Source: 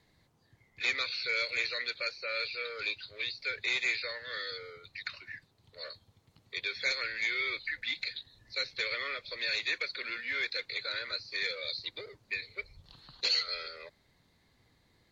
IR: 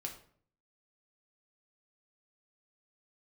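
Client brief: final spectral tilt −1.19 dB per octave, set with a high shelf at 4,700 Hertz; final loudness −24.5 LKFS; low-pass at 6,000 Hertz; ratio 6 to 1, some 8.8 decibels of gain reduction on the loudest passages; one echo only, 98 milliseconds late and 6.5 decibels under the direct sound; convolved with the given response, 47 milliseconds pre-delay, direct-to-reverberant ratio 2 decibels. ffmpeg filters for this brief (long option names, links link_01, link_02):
-filter_complex "[0:a]lowpass=6000,highshelf=frequency=4700:gain=3.5,acompressor=threshold=-35dB:ratio=6,aecho=1:1:98:0.473,asplit=2[link_01][link_02];[1:a]atrim=start_sample=2205,adelay=47[link_03];[link_02][link_03]afir=irnorm=-1:irlink=0,volume=-0.5dB[link_04];[link_01][link_04]amix=inputs=2:normalize=0,volume=11dB"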